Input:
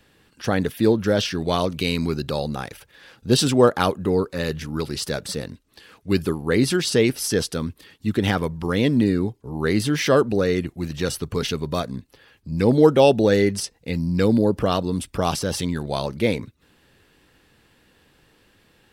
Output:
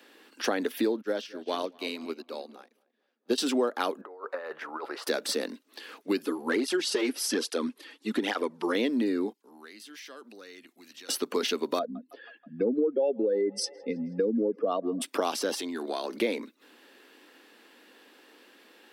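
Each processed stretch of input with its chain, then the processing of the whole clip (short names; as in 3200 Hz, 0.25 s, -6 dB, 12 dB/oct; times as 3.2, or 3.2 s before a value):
1.01–3.38 darkening echo 0.225 s, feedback 59%, low-pass 2500 Hz, level -13.5 dB + upward expander 2.5:1, over -37 dBFS
4.01–5.07 EQ curve 110 Hz 0 dB, 200 Hz -29 dB, 620 Hz -1 dB, 1300 Hz +1 dB, 2800 Hz -16 dB, 6000 Hz -25 dB + negative-ratio compressor -35 dBFS, ratio -0.5
6.26–8.75 brick-wall FIR low-pass 12000 Hz + hard clip -10.5 dBFS + tape flanging out of phase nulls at 1.2 Hz, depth 5.6 ms
9.33–11.09 passive tone stack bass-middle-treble 5-5-5 + compressor 20:1, threshold -44 dBFS
11.79–15.02 spectral contrast raised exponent 2 + band-limited delay 0.16 s, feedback 68%, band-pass 1400 Hz, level -22 dB
15.54–16.17 comb 2.8 ms, depth 36% + compressor 10:1, threshold -29 dBFS
whole clip: steep high-pass 240 Hz 48 dB/oct; compressor 6:1, threshold -28 dBFS; bell 8700 Hz -4 dB 0.89 oct; gain +3.5 dB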